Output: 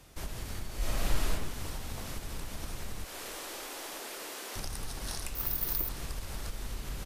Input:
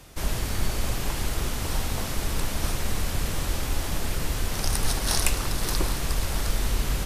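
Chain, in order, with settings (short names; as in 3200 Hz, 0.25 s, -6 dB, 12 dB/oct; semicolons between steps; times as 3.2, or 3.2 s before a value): 3.04–4.56 HPF 330 Hz 24 dB/oct; compressor, threshold -26 dBFS, peak gain reduction 10 dB; feedback echo 0.312 s, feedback 52%, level -17 dB; 0.77–1.3 reverb throw, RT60 0.9 s, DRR -7.5 dB; 5.35–5.89 careless resampling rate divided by 3×, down filtered, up zero stuff; gain -7.5 dB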